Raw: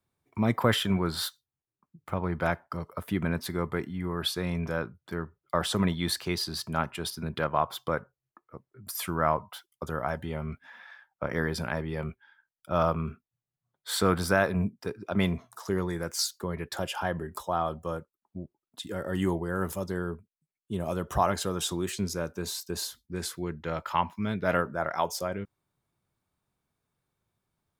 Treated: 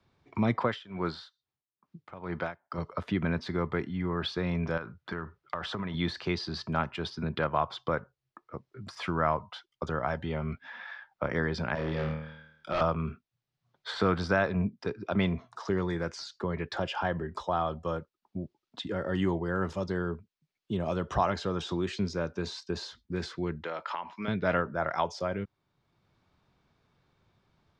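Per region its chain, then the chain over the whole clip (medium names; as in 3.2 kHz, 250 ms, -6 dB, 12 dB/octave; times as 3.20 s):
0.63–2.78 s: bass shelf 130 Hz -11.5 dB + logarithmic tremolo 2.3 Hz, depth 20 dB
4.77–5.94 s: peaking EQ 1.4 kHz +6.5 dB 1.8 oct + compression, threshold -33 dBFS
11.75–12.81 s: peaking EQ 100 Hz -10 dB 1.9 oct + flutter echo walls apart 4.4 m, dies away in 0.64 s + hard clipper -26.5 dBFS
23.64–24.28 s: high-pass 370 Hz + compression, threshold -33 dBFS
whole clip: de-esser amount 65%; low-pass 5.2 kHz 24 dB/octave; three bands compressed up and down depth 40%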